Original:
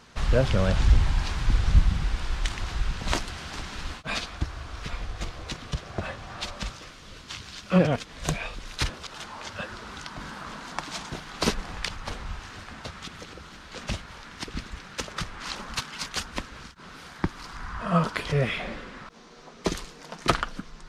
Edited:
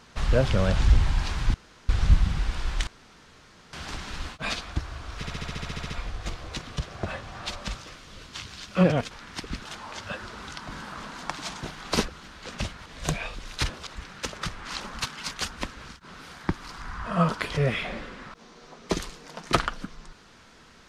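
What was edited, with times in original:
1.54 insert room tone 0.35 s
2.52–3.38 room tone
4.85 stutter 0.07 s, 11 plays
8.06–9.13 swap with 14.15–14.68
11.57–13.37 cut

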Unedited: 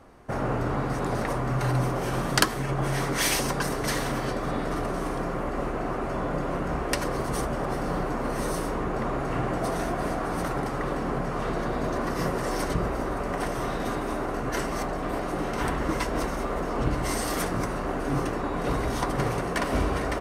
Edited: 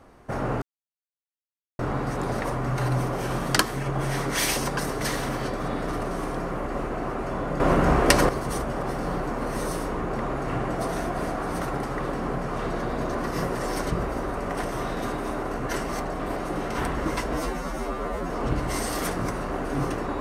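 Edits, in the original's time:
0.62 insert silence 1.17 s
6.43–7.12 gain +9 dB
16.17–16.65 stretch 2×

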